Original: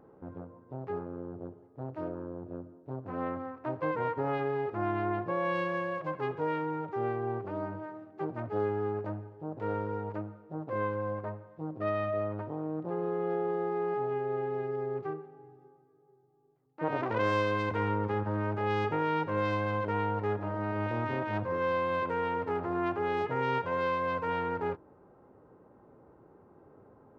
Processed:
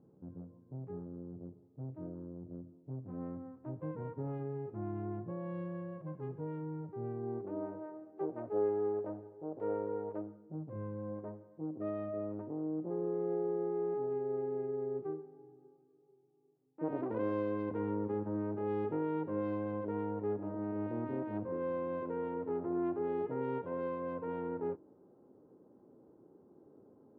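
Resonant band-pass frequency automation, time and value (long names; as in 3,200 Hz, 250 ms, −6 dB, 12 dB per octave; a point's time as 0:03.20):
resonant band-pass, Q 1.3
0:07.05 160 Hz
0:07.72 440 Hz
0:10.17 440 Hz
0:10.78 130 Hz
0:11.24 290 Hz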